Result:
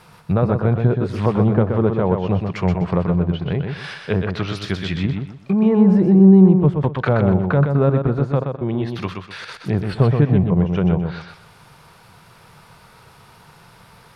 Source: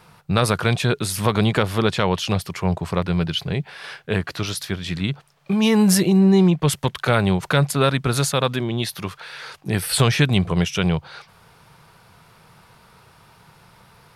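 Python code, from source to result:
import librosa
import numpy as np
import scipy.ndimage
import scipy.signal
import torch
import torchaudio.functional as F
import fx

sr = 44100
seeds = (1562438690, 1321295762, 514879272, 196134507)

p1 = fx.env_lowpass_down(x, sr, base_hz=750.0, full_db=-17.5)
p2 = fx.step_gate(p1, sr, bpm=108, pattern='xx.x..xx', floor_db=-24.0, edge_ms=4.5, at=(8.42, 9.47), fade=0.02)
p3 = p2 + fx.echo_feedback(p2, sr, ms=125, feedback_pct=28, wet_db=-5.5, dry=0)
y = p3 * librosa.db_to_amplitude(2.5)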